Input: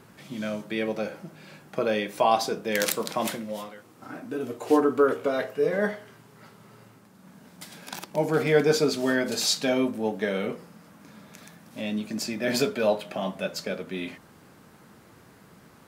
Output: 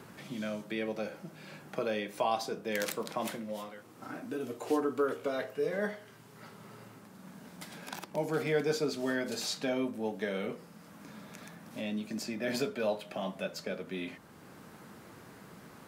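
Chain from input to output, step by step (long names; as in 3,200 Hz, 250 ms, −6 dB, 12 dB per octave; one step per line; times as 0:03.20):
multiband upward and downward compressor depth 40%
level −7.5 dB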